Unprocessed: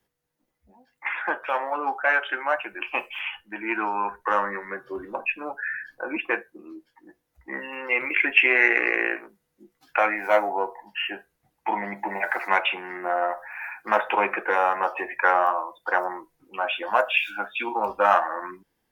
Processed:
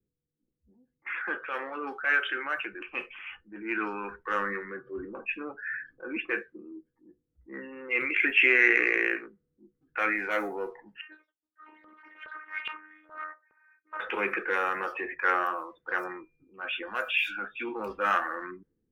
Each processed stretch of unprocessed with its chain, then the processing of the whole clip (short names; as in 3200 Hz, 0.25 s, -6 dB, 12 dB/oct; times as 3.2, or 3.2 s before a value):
11.01–14 echoes that change speed 0.112 s, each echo +6 st, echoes 2, each echo -6 dB + robotiser 308 Hz + LFO band-pass saw up 2.4 Hz 890–3100 Hz
15.95–17.41 bell 400 Hz -3 dB 3 oct + whine 2400 Hz -56 dBFS
whole clip: low-pass opened by the level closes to 350 Hz, open at -20 dBFS; band shelf 770 Hz -14 dB 1 oct; transient shaper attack -5 dB, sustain +3 dB; gain -1.5 dB